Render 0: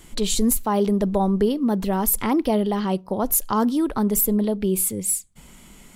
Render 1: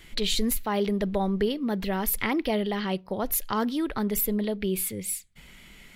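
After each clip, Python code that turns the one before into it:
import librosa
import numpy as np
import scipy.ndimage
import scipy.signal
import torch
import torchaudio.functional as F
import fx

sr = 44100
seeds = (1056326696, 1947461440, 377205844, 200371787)

y = fx.graphic_eq_10(x, sr, hz=(250, 1000, 2000, 4000, 8000), db=(-4, -5, 9, 5, -8))
y = y * librosa.db_to_amplitude(-3.5)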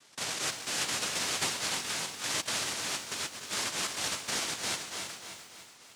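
y = fx.noise_vocoder(x, sr, seeds[0], bands=1)
y = fx.echo_feedback(y, sr, ms=294, feedback_pct=57, wet_db=-10.5)
y = fx.echo_crushed(y, sr, ms=315, feedback_pct=35, bits=7, wet_db=-8.5)
y = y * librosa.db_to_amplitude(-7.5)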